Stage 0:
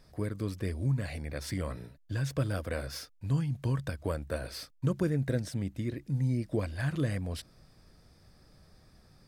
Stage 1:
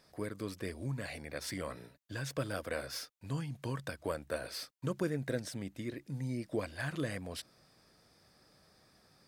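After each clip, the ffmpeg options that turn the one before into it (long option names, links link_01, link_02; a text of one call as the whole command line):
ffmpeg -i in.wav -af "highpass=frequency=380:poles=1" out.wav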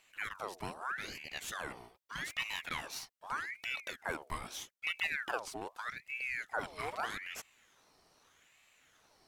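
ffmpeg -i in.wav -af "aeval=exprs='val(0)*sin(2*PI*1500*n/s+1500*0.65/0.81*sin(2*PI*0.81*n/s))':channel_layout=same,volume=1dB" out.wav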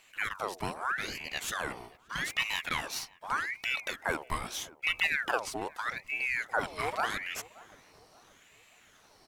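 ffmpeg -i in.wav -filter_complex "[0:a]asplit=2[link_01][link_02];[link_02]adelay=577,lowpass=frequency=830:poles=1,volume=-18dB,asplit=2[link_03][link_04];[link_04]adelay=577,lowpass=frequency=830:poles=1,volume=0.53,asplit=2[link_05][link_06];[link_06]adelay=577,lowpass=frequency=830:poles=1,volume=0.53,asplit=2[link_07][link_08];[link_08]adelay=577,lowpass=frequency=830:poles=1,volume=0.53[link_09];[link_01][link_03][link_05][link_07][link_09]amix=inputs=5:normalize=0,volume=6.5dB" out.wav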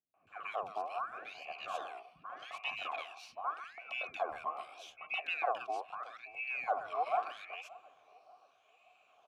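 ffmpeg -i in.wav -filter_complex "[0:a]asplit=3[link_01][link_02][link_03];[link_01]bandpass=frequency=730:width_type=q:width=8,volume=0dB[link_04];[link_02]bandpass=frequency=1090:width_type=q:width=8,volume=-6dB[link_05];[link_03]bandpass=frequency=2440:width_type=q:width=8,volume=-9dB[link_06];[link_04][link_05][link_06]amix=inputs=3:normalize=0,acrossover=split=250|1600[link_07][link_08][link_09];[link_08]adelay=140[link_10];[link_09]adelay=270[link_11];[link_07][link_10][link_11]amix=inputs=3:normalize=0,volume=6.5dB" out.wav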